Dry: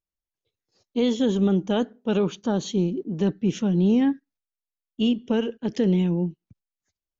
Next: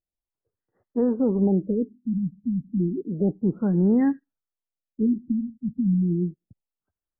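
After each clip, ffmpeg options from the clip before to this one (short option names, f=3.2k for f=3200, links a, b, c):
-af "afftfilt=real='re*lt(b*sr/1024,260*pow(2100/260,0.5+0.5*sin(2*PI*0.31*pts/sr)))':imag='im*lt(b*sr/1024,260*pow(2100/260,0.5+0.5*sin(2*PI*0.31*pts/sr)))':win_size=1024:overlap=0.75"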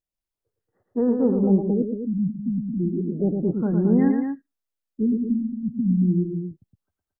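-af "aecho=1:1:110.8|224.5:0.562|0.447"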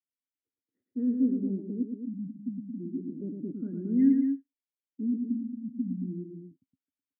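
-filter_complex "[0:a]asplit=3[a][b][c];[a]bandpass=f=270:t=q:w=8,volume=0dB[d];[b]bandpass=f=2.29k:t=q:w=8,volume=-6dB[e];[c]bandpass=f=3.01k:t=q:w=8,volume=-9dB[f];[d][e][f]amix=inputs=3:normalize=0"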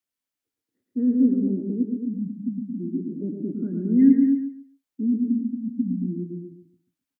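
-af "aecho=1:1:139|278|417:0.376|0.0789|0.0166,volume=6.5dB"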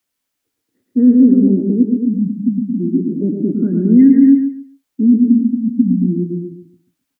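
-af "alimiter=level_in=13dB:limit=-1dB:release=50:level=0:latency=1,volume=-1dB"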